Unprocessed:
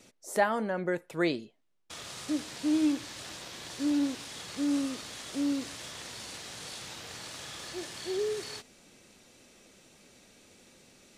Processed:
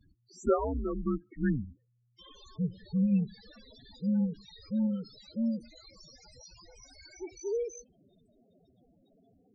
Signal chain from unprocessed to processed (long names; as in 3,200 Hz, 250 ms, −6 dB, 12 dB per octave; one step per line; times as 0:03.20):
gliding playback speed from 78% → 156%
frequency shifter −120 Hz
spectral peaks only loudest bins 8